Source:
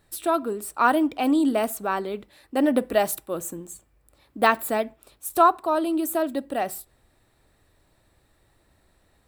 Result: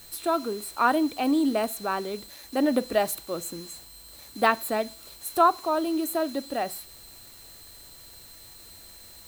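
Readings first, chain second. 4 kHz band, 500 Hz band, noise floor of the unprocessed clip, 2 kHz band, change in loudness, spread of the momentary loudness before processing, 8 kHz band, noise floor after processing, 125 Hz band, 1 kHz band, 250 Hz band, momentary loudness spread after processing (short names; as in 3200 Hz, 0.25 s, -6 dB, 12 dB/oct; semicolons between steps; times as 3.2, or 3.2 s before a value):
+2.0 dB, -2.5 dB, -65 dBFS, -2.5 dB, -2.5 dB, 15 LU, -1.5 dB, -48 dBFS, -2.0 dB, -2.5 dB, -2.5 dB, 22 LU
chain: whine 4100 Hz -42 dBFS; bit-crush 7-bit; gain -2.5 dB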